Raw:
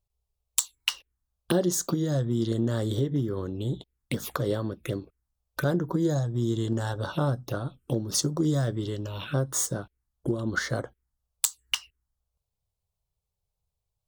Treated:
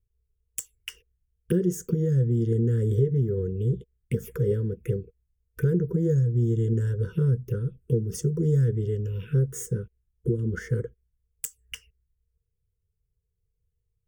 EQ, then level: Chebyshev band-stop 480–1000 Hz, order 4; resonant low shelf 700 Hz +13.5 dB, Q 1.5; static phaser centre 1.1 kHz, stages 6; -5.0 dB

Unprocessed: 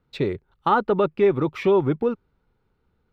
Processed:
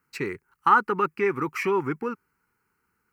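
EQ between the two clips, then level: high-pass 680 Hz 6 dB/octave; treble shelf 3.5 kHz +10 dB; static phaser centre 1.5 kHz, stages 4; +5.0 dB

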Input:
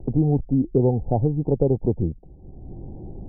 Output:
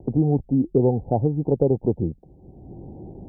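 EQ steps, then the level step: high-pass 130 Hz 6 dB/octave; +1.5 dB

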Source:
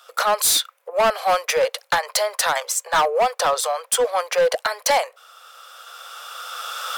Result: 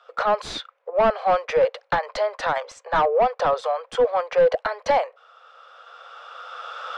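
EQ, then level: tape spacing loss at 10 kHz 43 dB; bass shelf 390 Hz +6 dB; treble shelf 3.6 kHz +7 dB; +1.0 dB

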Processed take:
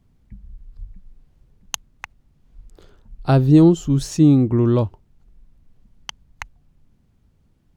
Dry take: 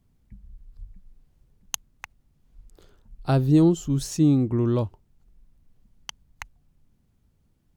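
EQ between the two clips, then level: treble shelf 7.3 kHz -9 dB; +6.0 dB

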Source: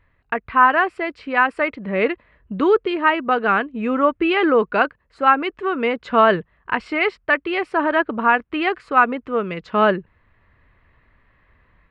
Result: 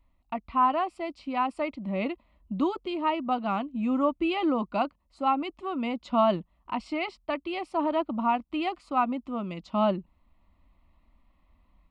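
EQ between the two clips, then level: tone controls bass +5 dB, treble +5 dB; static phaser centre 440 Hz, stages 6; -6.0 dB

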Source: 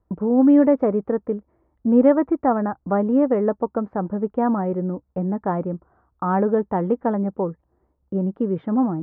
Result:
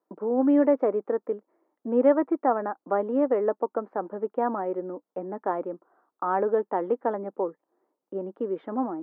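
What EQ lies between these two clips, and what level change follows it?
high-pass 300 Hz 24 dB/octave; -3.0 dB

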